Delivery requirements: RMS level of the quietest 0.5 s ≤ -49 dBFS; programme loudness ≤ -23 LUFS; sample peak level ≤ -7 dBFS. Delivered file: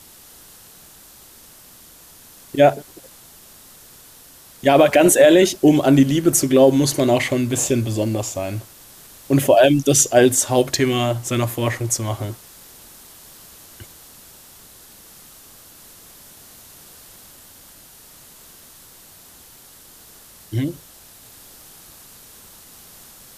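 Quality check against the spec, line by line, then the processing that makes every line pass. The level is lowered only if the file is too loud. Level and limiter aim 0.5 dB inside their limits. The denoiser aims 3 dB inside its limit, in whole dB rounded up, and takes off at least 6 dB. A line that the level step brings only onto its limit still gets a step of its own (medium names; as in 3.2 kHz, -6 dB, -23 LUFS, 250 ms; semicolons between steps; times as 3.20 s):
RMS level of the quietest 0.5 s -46 dBFS: fail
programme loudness -16.5 LUFS: fail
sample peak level -3.0 dBFS: fail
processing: trim -7 dB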